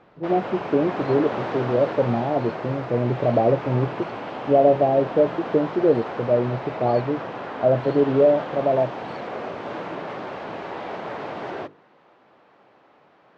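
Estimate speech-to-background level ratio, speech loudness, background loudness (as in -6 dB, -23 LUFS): 10.0 dB, -22.0 LUFS, -32.0 LUFS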